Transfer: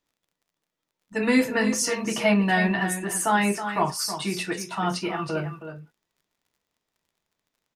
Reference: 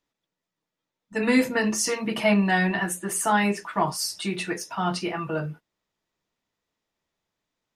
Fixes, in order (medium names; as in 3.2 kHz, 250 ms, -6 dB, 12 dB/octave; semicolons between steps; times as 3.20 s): de-click; inverse comb 321 ms -10 dB